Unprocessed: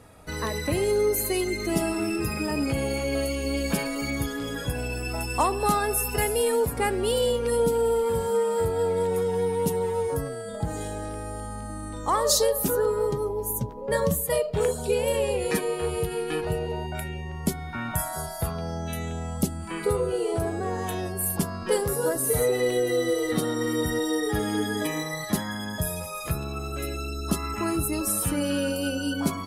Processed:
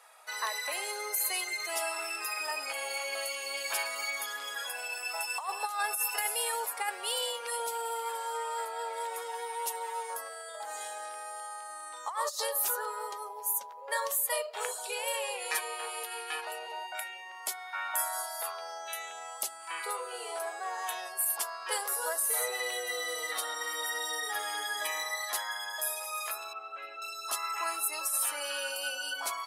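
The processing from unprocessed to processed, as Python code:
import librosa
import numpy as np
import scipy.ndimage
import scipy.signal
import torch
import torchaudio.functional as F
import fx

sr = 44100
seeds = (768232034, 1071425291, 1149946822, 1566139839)

y = scipy.signal.sosfilt(scipy.signal.butter(4, 760.0, 'highpass', fs=sr, output='sos'), x)
y = fx.quant_float(y, sr, bits=4, at=(4.62, 5.6))
y = fx.air_absorb(y, sr, metres=400.0, at=(26.53, 27.02))
y = fx.over_compress(y, sr, threshold_db=-28.0, ratio=-0.5)
y = fx.high_shelf(y, sr, hz=9700.0, db=-8.0, at=(8.11, 8.93))
y = y * librosa.db_to_amplitude(-1.0)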